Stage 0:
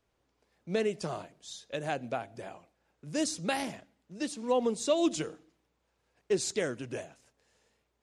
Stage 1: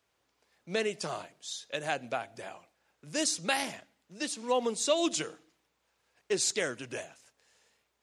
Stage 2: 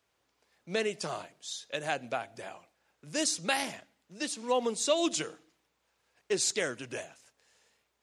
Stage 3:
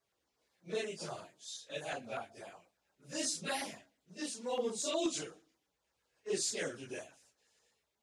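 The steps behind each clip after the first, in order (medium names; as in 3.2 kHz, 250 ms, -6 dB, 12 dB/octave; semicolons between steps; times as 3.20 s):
high-pass 61 Hz; tilt shelf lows -5.5 dB, about 650 Hz
no audible change
phase randomisation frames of 100 ms; LFO notch saw down 8.3 Hz 700–3400 Hz; trim -5.5 dB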